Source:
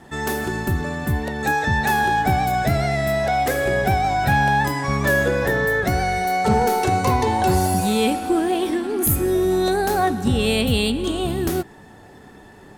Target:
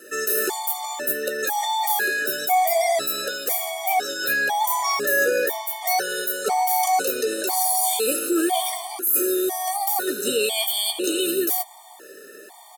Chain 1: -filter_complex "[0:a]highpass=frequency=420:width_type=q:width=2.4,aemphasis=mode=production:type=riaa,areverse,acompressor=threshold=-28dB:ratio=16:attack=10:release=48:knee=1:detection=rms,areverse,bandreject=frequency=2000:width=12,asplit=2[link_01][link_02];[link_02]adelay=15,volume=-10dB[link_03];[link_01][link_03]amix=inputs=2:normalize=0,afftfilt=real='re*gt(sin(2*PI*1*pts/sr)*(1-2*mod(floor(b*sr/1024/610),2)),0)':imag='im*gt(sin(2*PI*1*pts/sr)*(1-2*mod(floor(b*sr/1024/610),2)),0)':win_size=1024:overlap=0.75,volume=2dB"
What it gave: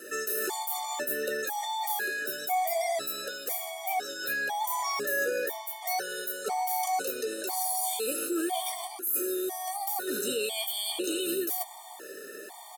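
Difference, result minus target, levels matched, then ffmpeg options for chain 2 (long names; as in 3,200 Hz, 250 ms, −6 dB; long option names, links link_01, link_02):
downward compressor: peak gain reduction +9 dB
-filter_complex "[0:a]highpass=frequency=420:width_type=q:width=2.4,aemphasis=mode=production:type=riaa,areverse,acompressor=threshold=-18.5dB:ratio=16:attack=10:release=48:knee=1:detection=rms,areverse,bandreject=frequency=2000:width=12,asplit=2[link_01][link_02];[link_02]adelay=15,volume=-10dB[link_03];[link_01][link_03]amix=inputs=2:normalize=0,afftfilt=real='re*gt(sin(2*PI*1*pts/sr)*(1-2*mod(floor(b*sr/1024/610),2)),0)':imag='im*gt(sin(2*PI*1*pts/sr)*(1-2*mod(floor(b*sr/1024/610),2)),0)':win_size=1024:overlap=0.75,volume=2dB"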